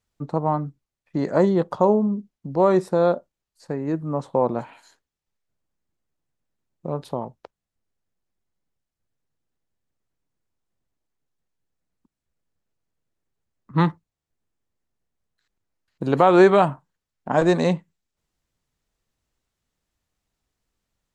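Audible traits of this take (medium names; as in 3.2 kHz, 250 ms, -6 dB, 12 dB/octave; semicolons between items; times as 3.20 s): noise floor -87 dBFS; spectral tilt -4.5 dB/octave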